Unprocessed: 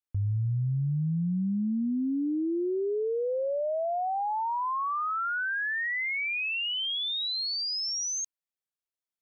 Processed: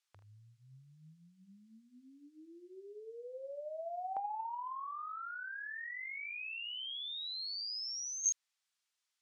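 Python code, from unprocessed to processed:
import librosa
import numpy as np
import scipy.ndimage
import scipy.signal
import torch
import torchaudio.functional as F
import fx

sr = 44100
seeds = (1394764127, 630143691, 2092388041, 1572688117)

p1 = fx.peak_eq(x, sr, hz=250.0, db=-12.5, octaves=1.9)
p2 = p1 + fx.room_early_taps(p1, sr, ms=(45, 77), db=(-10.0, -11.5), dry=0)
p3 = fx.filter_lfo_highpass(p2, sr, shape='saw_up', hz=0.24, low_hz=790.0, high_hz=2000.0, q=0.81)
p4 = fx.hum_notches(p3, sr, base_hz=60, count=6)
p5 = fx.over_compress(p4, sr, threshold_db=-38.0, ratio=-0.5)
p6 = scipy.signal.sosfilt(scipy.signal.butter(2, 6000.0, 'lowpass', fs=sr, output='sos'), p5)
p7 = fx.high_shelf(p6, sr, hz=4300.0, db=9.0)
y = p7 * 10.0 ** (-1.5 / 20.0)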